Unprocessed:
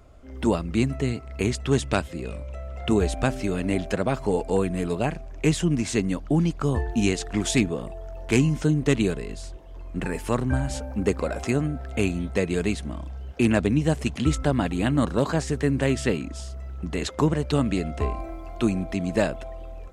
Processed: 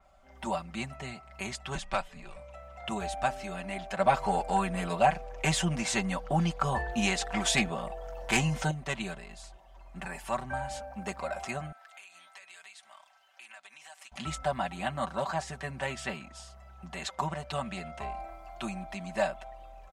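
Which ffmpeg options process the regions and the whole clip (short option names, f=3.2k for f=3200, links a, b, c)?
-filter_complex "[0:a]asettb=1/sr,asplit=3[a][b][c];[a]atrim=end=1.754[d];[b]atrim=start=1.75:end=2.36,asetpts=PTS-STARTPTS,afade=t=in:d=0.004:c=qsin,afade=t=out:st=0.606:d=0.004:c=qsin,highshelf=f=8.7k:g=-7,afreqshift=-85[e];[c]atrim=start=2.356[f];[d][e]acrossfade=d=0.004:c1=hsin:c2=qsin[g];[g][f]acrossfade=d=0.004:c1=qsin:c2=hsin,asettb=1/sr,asplit=3[h][i][j];[h]atrim=end=3.994[k];[i]atrim=start=3.99:end=8.71,asetpts=PTS-STARTPTS,afade=t=in:d=0.004:c=qsin,afade=t=out:st=4.716:d=0.004:c=qsin,acontrast=88,aeval=exprs='val(0)+0.126*sin(2*PI*490*n/s)':c=same[l];[j]atrim=start=8.706[m];[k][l]acrossfade=d=0.004:c1=hsin:c2=qsin[n];[n][m]acrossfade=d=0.004:c1=qsin:c2=hsin,asettb=1/sr,asplit=3[o][p][q];[o]atrim=end=11.724[r];[p]atrim=start=11.72:end=14.12,asetpts=PTS-STARTPTS,afade=t=in:d=0.004:c=qsin,afade=t=out:st=2.396:d=0.004:c=qsin,highpass=1.3k,acompressor=threshold=-41dB:ratio=8:attack=3.2:release=140:knee=1:detection=peak[s];[q]atrim=start=14.116[t];[r][s]acrossfade=d=0.004:c1=hsin:c2=qsin[u];[u][t]acrossfade=d=0.004:c1=qsin:c2=hsin,lowshelf=f=550:t=q:w=3:g=-8.5,aecho=1:1:5.2:0.81,adynamicequalizer=threshold=0.00562:dfrequency=4700:dqfactor=0.7:tfrequency=4700:tqfactor=0.7:attack=5:release=100:ratio=0.375:range=2:mode=cutabove:tftype=highshelf,volume=-7.5dB"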